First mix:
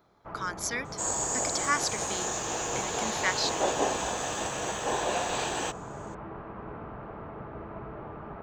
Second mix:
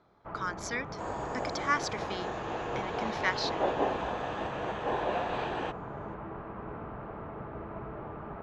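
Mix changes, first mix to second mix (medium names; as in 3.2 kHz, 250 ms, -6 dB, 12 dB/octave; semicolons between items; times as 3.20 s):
speech: add distance through air 79 m; second sound: add distance through air 350 m; master: add treble shelf 5.8 kHz -5.5 dB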